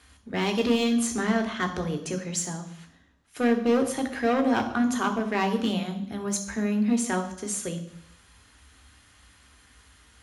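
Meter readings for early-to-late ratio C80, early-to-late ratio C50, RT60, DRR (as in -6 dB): 13.5 dB, 11.0 dB, 0.75 s, 5.0 dB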